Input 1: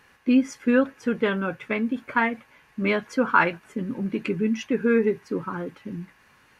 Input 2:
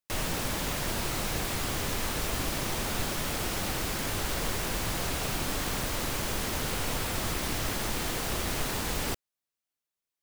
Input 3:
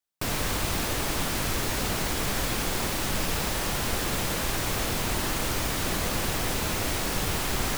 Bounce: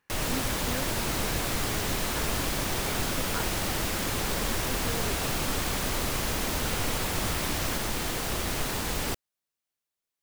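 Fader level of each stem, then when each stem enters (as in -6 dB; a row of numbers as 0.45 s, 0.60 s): -19.0 dB, +1.0 dB, -7.5 dB; 0.00 s, 0.00 s, 0.00 s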